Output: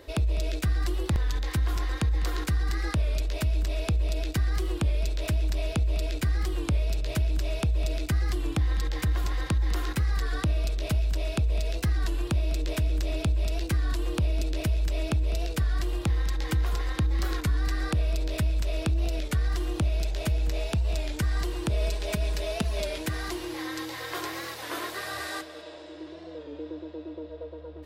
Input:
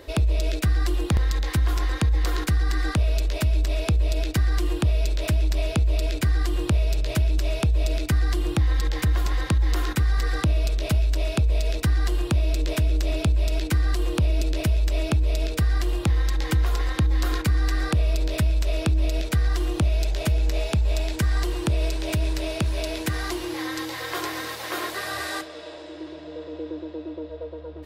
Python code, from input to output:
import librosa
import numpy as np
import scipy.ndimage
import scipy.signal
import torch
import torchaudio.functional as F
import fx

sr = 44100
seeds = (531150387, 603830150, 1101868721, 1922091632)

y = fx.comb(x, sr, ms=4.8, depth=0.7, at=(21.7, 22.98))
y = y + 10.0 ** (-19.0 / 20.0) * np.pad(y, (int(202 * sr / 1000.0), 0))[:len(y)]
y = fx.record_warp(y, sr, rpm=33.33, depth_cents=100.0)
y = y * librosa.db_to_amplitude(-4.5)